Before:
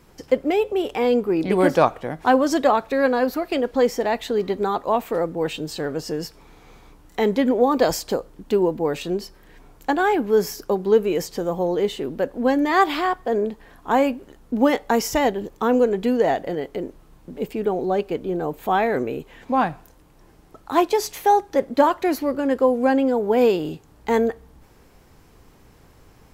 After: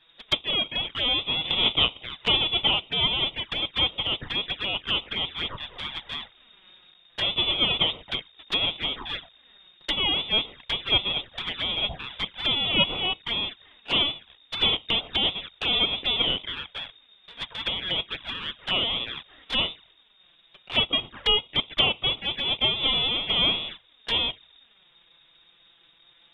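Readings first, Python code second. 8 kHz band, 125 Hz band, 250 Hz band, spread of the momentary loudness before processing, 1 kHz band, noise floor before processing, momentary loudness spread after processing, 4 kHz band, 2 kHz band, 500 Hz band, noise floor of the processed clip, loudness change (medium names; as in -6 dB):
under -20 dB, -4.0 dB, -16.5 dB, 10 LU, -13.5 dB, -52 dBFS, 12 LU, +16.0 dB, -0.5 dB, -18.0 dB, -60 dBFS, -3.0 dB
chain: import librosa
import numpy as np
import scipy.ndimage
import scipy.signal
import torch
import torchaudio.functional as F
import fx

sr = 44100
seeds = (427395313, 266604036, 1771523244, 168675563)

y = fx.halfwave_hold(x, sr)
y = fx.freq_invert(y, sr, carrier_hz=3700)
y = fx.air_absorb(y, sr, metres=460.0)
y = fx.env_flanger(y, sr, rest_ms=6.6, full_db=-23.0)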